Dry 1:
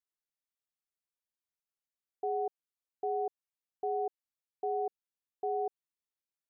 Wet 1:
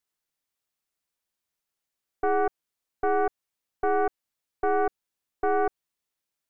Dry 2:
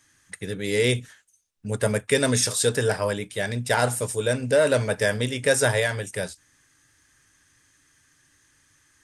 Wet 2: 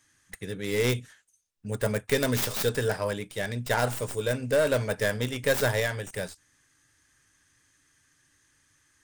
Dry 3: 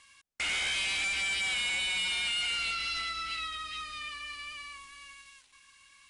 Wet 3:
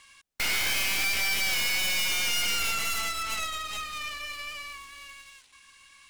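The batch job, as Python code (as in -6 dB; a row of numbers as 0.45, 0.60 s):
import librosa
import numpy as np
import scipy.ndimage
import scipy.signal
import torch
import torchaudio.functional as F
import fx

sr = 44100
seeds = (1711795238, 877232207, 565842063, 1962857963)

y = fx.tracing_dist(x, sr, depth_ms=0.22)
y = y * 10.0 ** (-30 / 20.0) / np.sqrt(np.mean(np.square(y)))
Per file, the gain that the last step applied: +9.0, -4.5, +4.0 dB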